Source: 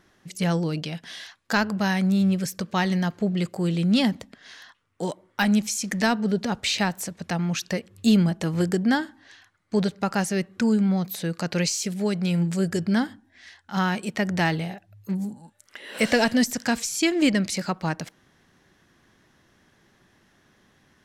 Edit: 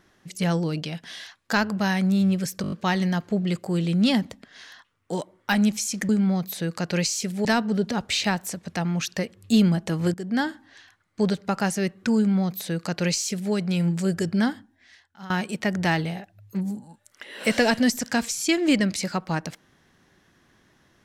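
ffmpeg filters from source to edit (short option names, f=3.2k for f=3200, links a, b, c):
-filter_complex "[0:a]asplit=10[a][b][c][d][e][f][g][h][i][j];[a]atrim=end=2.642[k];[b]atrim=start=2.618:end=2.642[l];[c]atrim=start=2.618:end=2.642[m];[d]atrim=start=2.618:end=2.642[n];[e]atrim=start=2.618:end=2.642[o];[f]atrim=start=2.618:end=5.992[p];[g]atrim=start=10.708:end=12.072[q];[h]atrim=start=5.988:end=8.68,asetpts=PTS-STARTPTS,afade=t=out:st=2.688:d=0.004:c=hsin:silence=0.133352[r];[i]atrim=start=8.68:end=13.84,asetpts=PTS-STARTPTS,afade=t=in:d=0.34:silence=0.133352,afade=t=out:st=4.33:d=0.83:silence=0.112202[s];[j]atrim=start=13.84,asetpts=PTS-STARTPTS,afade=t=in:d=0.004:c=hsin:silence=0.112202[t];[k][l]acrossfade=d=0.004:c1=hsin:c2=hsin[u];[u][m]acrossfade=d=0.004:c1=hsin:c2=hsin[v];[v][n]acrossfade=d=0.004:c1=hsin:c2=hsin[w];[w][o]acrossfade=d=0.004:c1=hsin:c2=hsin[x];[x][p]acrossfade=d=0.004:c1=hsin:c2=hsin[y];[y][q]acrossfade=d=0.004:c1=hsin:c2=hsin[z];[r][s][t]concat=n=3:v=0:a=1[aa];[z][aa]acrossfade=d=0.004:c1=hsin:c2=hsin"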